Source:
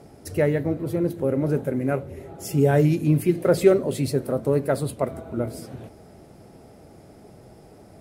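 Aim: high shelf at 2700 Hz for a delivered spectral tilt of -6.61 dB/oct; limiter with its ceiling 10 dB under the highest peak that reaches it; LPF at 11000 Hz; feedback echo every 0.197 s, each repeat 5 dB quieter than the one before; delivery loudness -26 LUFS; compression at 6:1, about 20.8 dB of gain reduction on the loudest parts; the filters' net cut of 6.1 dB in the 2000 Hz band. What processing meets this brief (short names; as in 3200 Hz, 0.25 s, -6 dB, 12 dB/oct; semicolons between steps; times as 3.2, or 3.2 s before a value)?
LPF 11000 Hz; bell 2000 Hz -6.5 dB; high shelf 2700 Hz -4.5 dB; compressor 6:1, threshold -34 dBFS; limiter -31.5 dBFS; feedback echo 0.197 s, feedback 56%, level -5 dB; gain +15 dB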